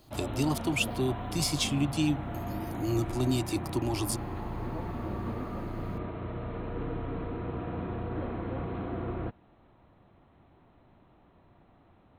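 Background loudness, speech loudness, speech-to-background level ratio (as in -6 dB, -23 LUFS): -37.0 LUFS, -31.0 LUFS, 6.0 dB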